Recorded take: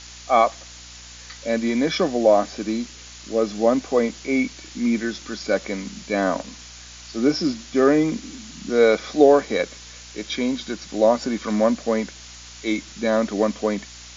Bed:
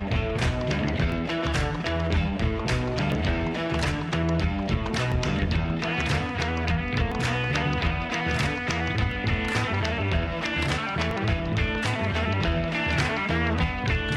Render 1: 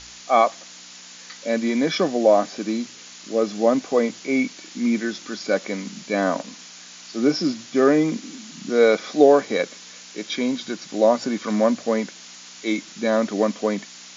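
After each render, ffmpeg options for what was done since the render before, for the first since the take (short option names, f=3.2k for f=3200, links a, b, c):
-af "bandreject=f=60:t=h:w=4,bandreject=f=120:t=h:w=4"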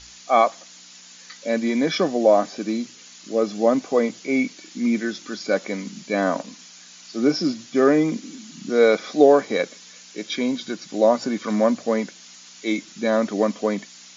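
-af "afftdn=nr=6:nf=-43"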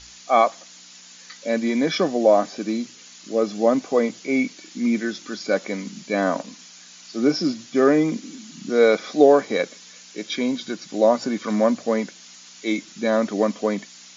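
-af anull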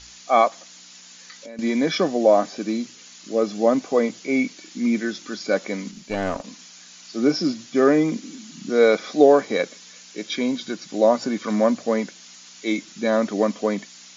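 -filter_complex "[0:a]asettb=1/sr,asplit=3[a][b][c];[a]atrim=end=0.484[d];[b]atrim=start=0.48:end=1.59,asetpts=PTS-STARTPTS,afade=t=in:d=0.004:c=qsin,afade=t=out:st=1.106:d=0.004:c=qsin,acompressor=threshold=-36dB:ratio=6:attack=3.2:release=140:knee=1:detection=peak[e];[c]atrim=start=1.586[f];[d][e]acrossfade=d=0.004:c1=hsin:c2=qsin[g];[g][f]acrossfade=d=0.004:c1=qsin:c2=hsin,asettb=1/sr,asplit=3[h][i][j];[h]atrim=end=5.914[k];[i]atrim=start=5.91:end=6.44,asetpts=PTS-STARTPTS,afade=t=in:d=0.004:c=qsin,afade=t=out:st=0.526:d=0.004:c=qsin,aeval=exprs='(tanh(6.31*val(0)+0.65)-tanh(0.65))/6.31':c=same[l];[j]atrim=start=6.436[m];[k][l]acrossfade=d=0.004:c1=hsin:c2=qsin[n];[n][m]acrossfade=d=0.004:c1=qsin:c2=hsin"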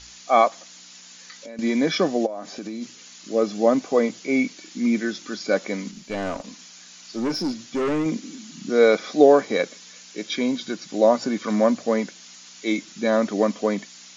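-filter_complex "[0:a]asplit=3[a][b][c];[a]afade=t=out:st=2.25:d=0.02[d];[b]acompressor=threshold=-28dB:ratio=12:attack=3.2:release=140:knee=1:detection=peak,afade=t=in:st=2.25:d=0.02,afade=t=out:st=2.81:d=0.02[e];[c]afade=t=in:st=2.81:d=0.02[f];[d][e][f]amix=inputs=3:normalize=0,asettb=1/sr,asplit=3[g][h][i];[g]atrim=end=6.004[j];[h]atrim=start=6:end=8.06,asetpts=PTS-STARTPTS,afade=t=in:d=0.004:c=qsin,afade=t=out:st=2.056:d=0.004:c=qsin,aeval=exprs='(tanh(10*val(0)+0.15)-tanh(0.15))/10':c=same[k];[i]atrim=start=8.056[l];[j][k]acrossfade=d=0.004:c1=hsin:c2=qsin[m];[m][l]acrossfade=d=0.004:c1=qsin:c2=hsin"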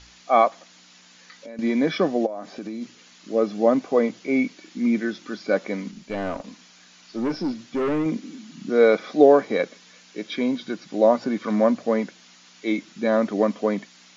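-filter_complex "[0:a]acrossover=split=5300[a][b];[b]acompressor=threshold=-53dB:ratio=4:attack=1:release=60[c];[a][c]amix=inputs=2:normalize=0,highshelf=f=3.8k:g=-8"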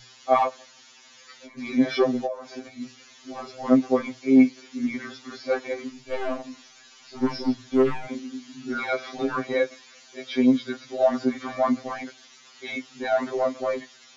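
-filter_complex "[0:a]asplit=2[a][b];[b]asoftclip=type=tanh:threshold=-18dB,volume=-9dB[c];[a][c]amix=inputs=2:normalize=0,afftfilt=real='re*2.45*eq(mod(b,6),0)':imag='im*2.45*eq(mod(b,6),0)':win_size=2048:overlap=0.75"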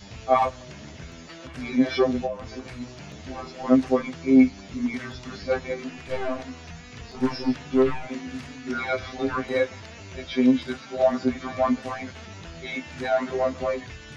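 -filter_complex "[1:a]volume=-16.5dB[a];[0:a][a]amix=inputs=2:normalize=0"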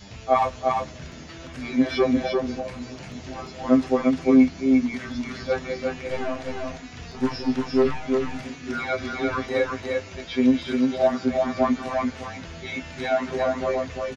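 -af "aecho=1:1:348:0.668"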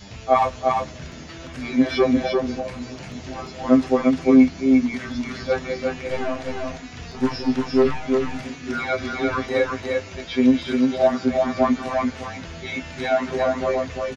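-af "volume=2.5dB"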